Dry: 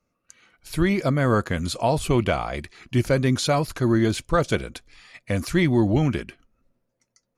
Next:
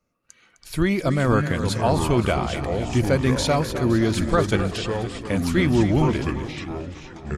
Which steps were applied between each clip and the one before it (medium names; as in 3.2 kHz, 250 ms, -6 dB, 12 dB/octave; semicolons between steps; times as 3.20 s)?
on a send: feedback delay 258 ms, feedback 52%, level -11.5 dB; on the sum: ever faster or slower copies 228 ms, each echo -5 st, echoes 3, each echo -6 dB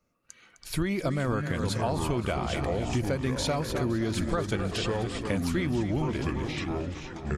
compression, threshold -25 dBFS, peak gain reduction 11 dB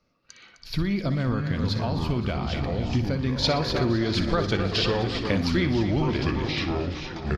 time-frequency box 0.61–3.43 s, 280–11000 Hz -6 dB; resonant high shelf 6.4 kHz -11.5 dB, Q 3; on a send: feedback delay 60 ms, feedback 43%, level -12 dB; on the sum: trim +4 dB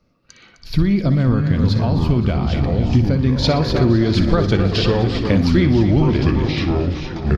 bass shelf 490 Hz +8.5 dB; trim +2.5 dB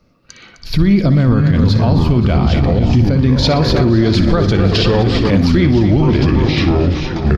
peak limiter -11 dBFS, peak gain reduction 8 dB; trim +7 dB